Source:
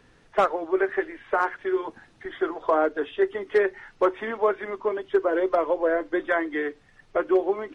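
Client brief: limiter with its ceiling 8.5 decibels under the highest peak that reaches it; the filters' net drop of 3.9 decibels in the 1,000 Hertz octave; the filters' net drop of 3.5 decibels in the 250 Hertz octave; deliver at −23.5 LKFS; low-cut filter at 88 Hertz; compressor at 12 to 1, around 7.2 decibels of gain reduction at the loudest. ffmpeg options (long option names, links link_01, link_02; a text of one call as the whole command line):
ffmpeg -i in.wav -af "highpass=88,equalizer=frequency=250:width_type=o:gain=-6,equalizer=frequency=1000:width_type=o:gain=-5,acompressor=threshold=-26dB:ratio=12,volume=12dB,alimiter=limit=-12.5dB:level=0:latency=1" out.wav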